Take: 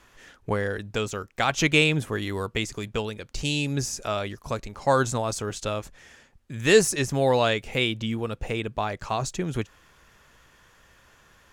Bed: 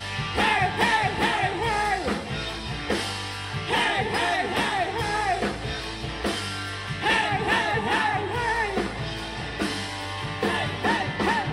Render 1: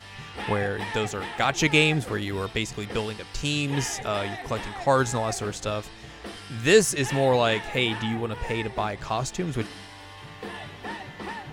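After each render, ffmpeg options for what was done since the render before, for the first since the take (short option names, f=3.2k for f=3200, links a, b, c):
-filter_complex "[1:a]volume=-12dB[a];[0:a][a]amix=inputs=2:normalize=0"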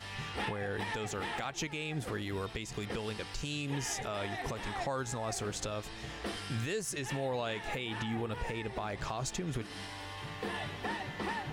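-af "acompressor=threshold=-28dB:ratio=3,alimiter=level_in=1.5dB:limit=-24dB:level=0:latency=1:release=234,volume=-1.5dB"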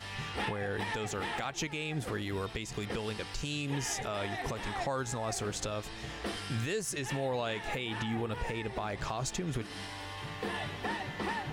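-af "volume=1.5dB"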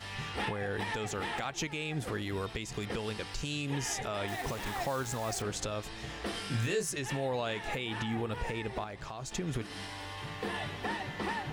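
-filter_complex "[0:a]asettb=1/sr,asplit=3[a][b][c];[a]atrim=end=4.284[d];[b]atrim=start=4.28:end=5.42,asetpts=PTS-STARTPTS,afade=t=in:d=0.004:c=qsin,afade=t=out:st=1.136:d=0.004:c=qsin,acrusher=bits=8:dc=4:mix=0:aa=0.000001[e];[c]atrim=start=5.416[f];[d][e]acrossfade=d=0.004:c1=hsin:c2=qsin[g];[g][f]acrossfade=d=0.004:c1=qsin:c2=hsin,asettb=1/sr,asplit=3[h][i][j];[h]atrim=end=6.324[k];[i]atrim=start=6.32:end=6.9,asetpts=PTS-STARTPTS,afade=t=in:d=0.004:c=qsin,afade=t=out:st=0.576:d=0.004:c=qsin,asplit=2[l][m];[m]adelay=25,volume=-4dB[n];[l][n]amix=inputs=2:normalize=0,atrim=end_sample=25578[o];[j]atrim=start=6.896[p];[k][o]acrossfade=d=0.004:c1=hsin:c2=qsin[q];[q][p]acrossfade=d=0.004:c1=qsin:c2=hsin,asplit=3[r][s][t];[r]atrim=end=8.842[u];[s]atrim=start=8.838:end=9.312,asetpts=PTS-STARTPTS,volume=-6.5dB[v];[t]atrim=start=9.308[w];[u][v]acrossfade=d=0.004:c1=hsin:c2=hsin[x];[x][w]acrossfade=d=0.004:c1=hsin:c2=hsin"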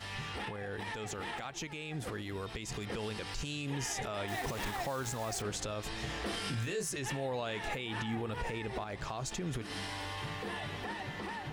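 -af "alimiter=level_in=7dB:limit=-24dB:level=0:latency=1:release=94,volume=-7dB,dynaudnorm=f=980:g=5:m=3.5dB"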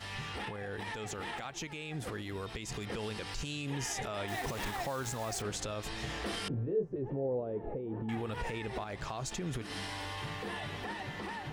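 -filter_complex "[0:a]asettb=1/sr,asplit=3[a][b][c];[a]atrim=end=6.484[d];[b]atrim=start=6.48:end=8.09,asetpts=PTS-STARTPTS,afade=t=in:d=0.004:c=qsin,afade=t=out:st=1.606:d=0.004:c=qsin,lowpass=f=450:t=q:w=2[e];[c]atrim=start=8.086[f];[d][e]acrossfade=d=0.004:c1=hsin:c2=qsin[g];[g][f]acrossfade=d=0.004:c1=qsin:c2=hsin"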